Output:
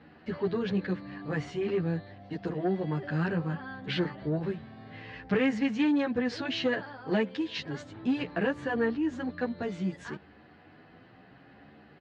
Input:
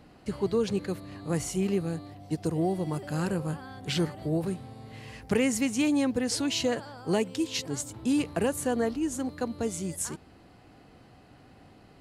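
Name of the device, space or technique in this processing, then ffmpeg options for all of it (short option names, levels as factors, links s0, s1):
barber-pole flanger into a guitar amplifier: -filter_complex "[0:a]asplit=2[s0][s1];[s1]adelay=10.5,afreqshift=0.67[s2];[s0][s2]amix=inputs=2:normalize=1,asoftclip=type=tanh:threshold=0.0794,highpass=82,equalizer=f=110:t=q:w=4:g=-4,equalizer=f=190:t=q:w=4:g=3,equalizer=f=1700:t=q:w=4:g=9,lowpass=f=3900:w=0.5412,lowpass=f=3900:w=1.3066,volume=1.33"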